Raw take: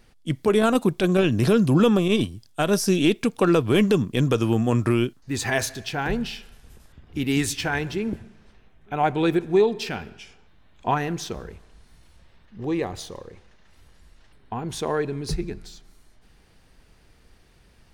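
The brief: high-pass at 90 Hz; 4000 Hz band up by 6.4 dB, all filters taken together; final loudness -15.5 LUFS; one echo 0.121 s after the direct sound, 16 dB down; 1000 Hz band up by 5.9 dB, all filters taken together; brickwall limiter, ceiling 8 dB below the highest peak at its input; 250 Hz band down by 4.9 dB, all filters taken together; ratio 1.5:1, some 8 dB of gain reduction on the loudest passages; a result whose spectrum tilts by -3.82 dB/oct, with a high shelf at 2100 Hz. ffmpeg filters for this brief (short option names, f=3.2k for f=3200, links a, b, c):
-af "highpass=90,equalizer=f=250:t=o:g=-7.5,equalizer=f=1k:t=o:g=7.5,highshelf=f=2.1k:g=3.5,equalizer=f=4k:t=o:g=4.5,acompressor=threshold=-34dB:ratio=1.5,alimiter=limit=-18dB:level=0:latency=1,aecho=1:1:121:0.158,volume=15.5dB"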